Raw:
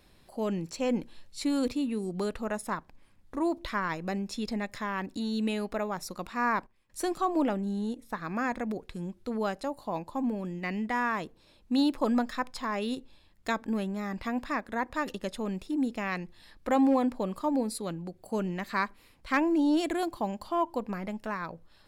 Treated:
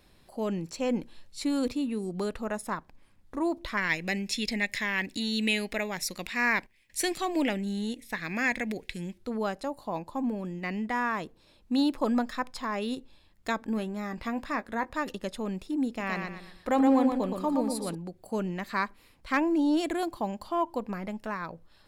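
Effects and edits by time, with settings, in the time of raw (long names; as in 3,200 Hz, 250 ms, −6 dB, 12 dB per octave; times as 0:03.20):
0:03.77–0:09.18: high shelf with overshoot 1,600 Hz +8 dB, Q 3
0:13.75–0:14.92: double-tracking delay 18 ms −12 dB
0:15.88–0:17.95: repeating echo 119 ms, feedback 36%, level −5 dB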